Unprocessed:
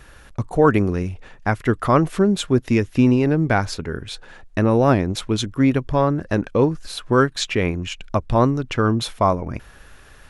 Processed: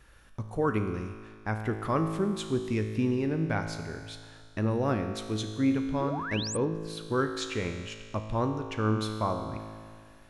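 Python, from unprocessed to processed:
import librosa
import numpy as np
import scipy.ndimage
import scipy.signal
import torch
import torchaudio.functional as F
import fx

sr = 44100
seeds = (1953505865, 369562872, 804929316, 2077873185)

y = fx.peak_eq(x, sr, hz=690.0, db=-4.0, octaves=0.24)
y = fx.comb_fb(y, sr, f0_hz=54.0, decay_s=2.0, harmonics='all', damping=0.0, mix_pct=80)
y = fx.spec_paint(y, sr, seeds[0], shape='rise', start_s=6.0, length_s=0.57, low_hz=290.0, high_hz=9400.0, level_db=-36.0)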